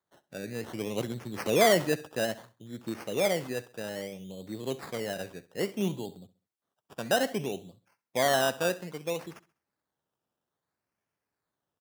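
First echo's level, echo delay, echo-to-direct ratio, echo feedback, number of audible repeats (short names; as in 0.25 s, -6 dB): -18.0 dB, 66 ms, -17.5 dB, 36%, 2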